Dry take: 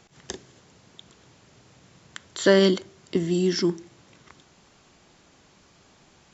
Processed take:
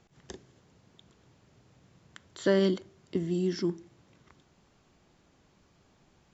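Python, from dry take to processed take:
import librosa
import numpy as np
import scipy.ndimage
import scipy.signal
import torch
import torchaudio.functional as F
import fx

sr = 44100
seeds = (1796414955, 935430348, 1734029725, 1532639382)

y = fx.tilt_eq(x, sr, slope=-1.5)
y = y * 10.0 ** (-9.0 / 20.0)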